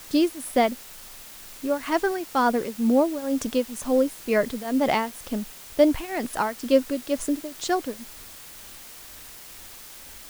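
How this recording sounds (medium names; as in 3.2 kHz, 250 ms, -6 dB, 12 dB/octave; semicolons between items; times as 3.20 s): tremolo triangle 2.1 Hz, depth 90%; a quantiser's noise floor 8-bit, dither triangular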